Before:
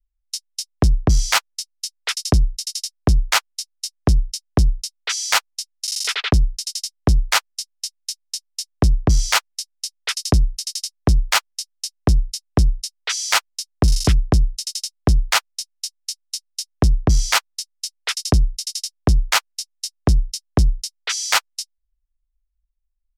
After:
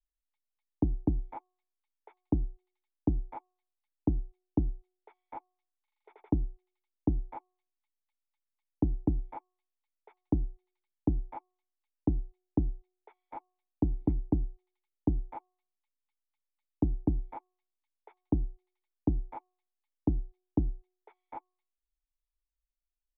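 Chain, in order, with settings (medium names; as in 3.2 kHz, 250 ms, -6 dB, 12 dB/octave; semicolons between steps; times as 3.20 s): cascade formant filter u; de-hum 366.2 Hz, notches 3; trim -1 dB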